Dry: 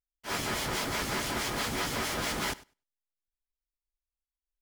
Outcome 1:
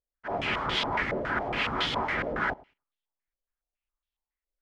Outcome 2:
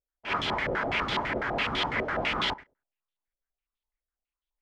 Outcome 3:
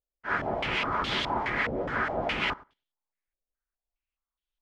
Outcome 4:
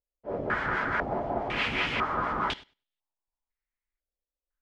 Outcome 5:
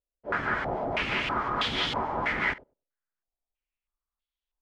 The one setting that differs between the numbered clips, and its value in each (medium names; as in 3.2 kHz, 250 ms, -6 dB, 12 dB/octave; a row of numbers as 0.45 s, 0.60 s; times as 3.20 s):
step-sequenced low-pass, rate: 7.2 Hz, 12 Hz, 4.8 Hz, 2 Hz, 3.1 Hz